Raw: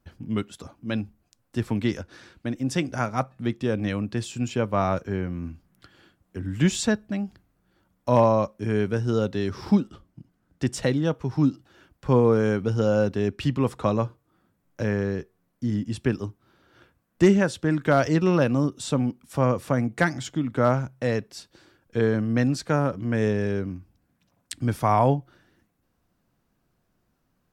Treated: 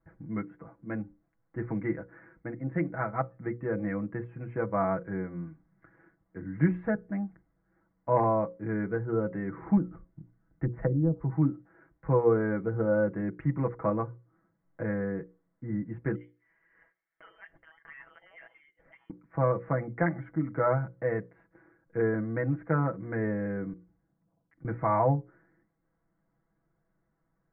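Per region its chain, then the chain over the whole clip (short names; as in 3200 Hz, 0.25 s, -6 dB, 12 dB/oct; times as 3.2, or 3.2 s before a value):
9.77–11.3 treble ducked by the level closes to 310 Hz, closed at -18.5 dBFS + low shelf 83 Hz +11 dB
16.15–19.1 compressor 2:1, threshold -44 dBFS + inverted band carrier 3300 Hz
23.73–24.65 low-pass opened by the level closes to 590 Hz, open at -38.5 dBFS + compressor 3:1, threshold -52 dBFS
whole clip: Chebyshev low-pass 2100 Hz, order 6; notches 60/120/180/240/300/360/420/480/540 Hz; comb 6.1 ms, depth 83%; gain -6 dB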